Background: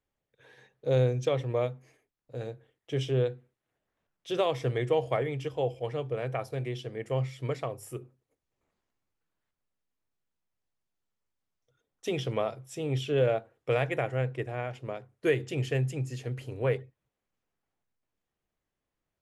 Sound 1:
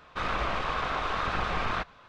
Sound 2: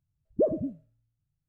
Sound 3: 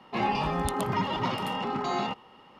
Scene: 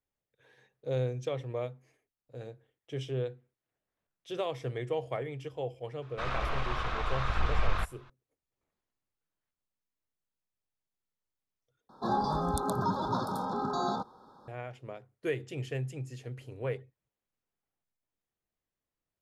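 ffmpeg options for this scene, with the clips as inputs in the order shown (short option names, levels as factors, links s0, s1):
-filter_complex "[0:a]volume=0.473[s0];[1:a]asubboost=boost=9.5:cutoff=100[s1];[3:a]asuperstop=centerf=2400:order=20:qfactor=1.3[s2];[s0]asplit=2[s3][s4];[s3]atrim=end=11.894[s5];[s2]atrim=end=2.59,asetpts=PTS-STARTPTS,volume=0.794[s6];[s4]atrim=start=14.476[s7];[s1]atrim=end=2.08,asetpts=PTS-STARTPTS,volume=0.562,afade=t=in:d=0.004:c=hsin,afade=t=out:st=2.076:d=0.004:c=hsin,adelay=6020[s8];[s5][s6]acrossfade=d=0.004:c1=hsin:c2=hsin[s9];[s9][s7]acrossfade=d=0.004:c1=hsin:c2=hsin[s10];[s10][s8]amix=inputs=2:normalize=0"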